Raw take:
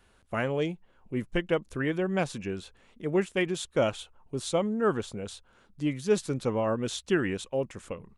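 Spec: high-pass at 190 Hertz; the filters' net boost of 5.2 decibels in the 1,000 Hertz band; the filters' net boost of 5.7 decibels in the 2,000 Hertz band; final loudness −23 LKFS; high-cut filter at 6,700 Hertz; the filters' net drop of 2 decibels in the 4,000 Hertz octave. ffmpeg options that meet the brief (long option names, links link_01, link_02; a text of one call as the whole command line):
ffmpeg -i in.wav -af "highpass=190,lowpass=6700,equalizer=frequency=1000:width_type=o:gain=5.5,equalizer=frequency=2000:width_type=o:gain=6.5,equalizer=frequency=4000:width_type=o:gain=-5.5,volume=5.5dB" out.wav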